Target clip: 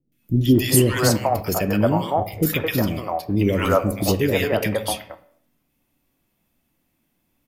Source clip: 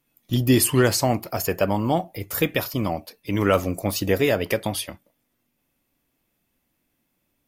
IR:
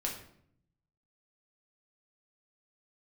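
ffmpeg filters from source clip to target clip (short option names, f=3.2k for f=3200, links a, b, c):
-filter_complex "[0:a]acrossover=split=450|1600[a][b][c];[c]adelay=120[d];[b]adelay=220[e];[a][e][d]amix=inputs=3:normalize=0,asplit=2[f][g];[1:a]atrim=start_sample=2205,afade=t=out:st=0.38:d=0.01,atrim=end_sample=17199,lowpass=3.3k[h];[g][h]afir=irnorm=-1:irlink=0,volume=-8.5dB[i];[f][i]amix=inputs=2:normalize=0,volume=1.5dB"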